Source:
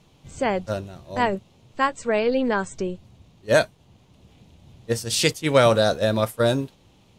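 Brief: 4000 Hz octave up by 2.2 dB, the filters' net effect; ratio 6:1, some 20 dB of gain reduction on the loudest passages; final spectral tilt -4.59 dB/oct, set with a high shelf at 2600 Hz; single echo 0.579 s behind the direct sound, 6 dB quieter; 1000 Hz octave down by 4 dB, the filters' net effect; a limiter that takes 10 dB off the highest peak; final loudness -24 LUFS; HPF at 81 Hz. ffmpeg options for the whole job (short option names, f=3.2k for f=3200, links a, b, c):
-af "highpass=81,equalizer=f=1k:t=o:g=-5,highshelf=f=2.6k:g=-4.5,equalizer=f=4k:t=o:g=6.5,acompressor=threshold=-36dB:ratio=6,alimiter=level_in=9.5dB:limit=-24dB:level=0:latency=1,volume=-9.5dB,aecho=1:1:579:0.501,volume=20dB"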